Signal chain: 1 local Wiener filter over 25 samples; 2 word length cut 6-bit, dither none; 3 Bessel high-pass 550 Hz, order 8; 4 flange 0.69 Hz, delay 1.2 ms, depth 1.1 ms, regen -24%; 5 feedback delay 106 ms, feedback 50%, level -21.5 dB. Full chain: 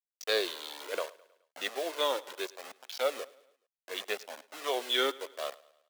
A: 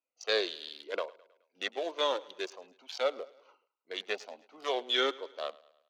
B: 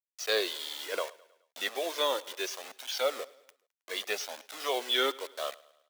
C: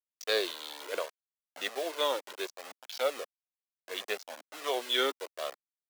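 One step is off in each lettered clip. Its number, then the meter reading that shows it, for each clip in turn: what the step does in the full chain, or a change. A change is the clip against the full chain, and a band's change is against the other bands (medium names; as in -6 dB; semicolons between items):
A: 2, distortion -15 dB; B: 1, 8 kHz band +3.5 dB; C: 5, echo-to-direct -20.5 dB to none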